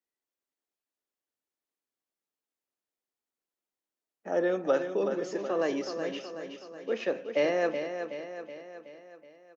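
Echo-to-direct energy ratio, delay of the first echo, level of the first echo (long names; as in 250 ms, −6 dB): −6.5 dB, 373 ms, −8.0 dB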